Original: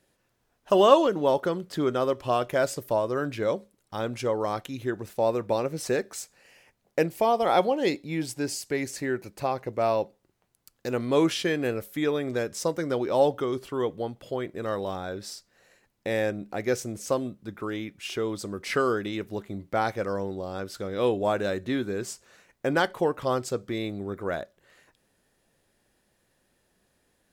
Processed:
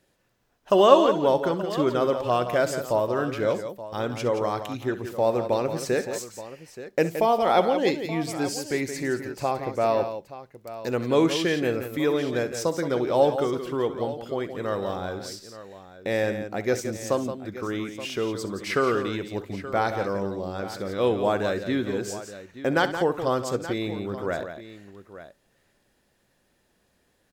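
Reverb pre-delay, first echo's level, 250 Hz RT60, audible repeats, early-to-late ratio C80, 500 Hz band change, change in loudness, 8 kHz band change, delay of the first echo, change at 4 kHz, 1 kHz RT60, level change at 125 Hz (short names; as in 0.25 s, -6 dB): none, -14.5 dB, none, 3, none, +2.0 dB, +2.0 dB, +1.0 dB, 66 ms, +2.0 dB, none, +2.5 dB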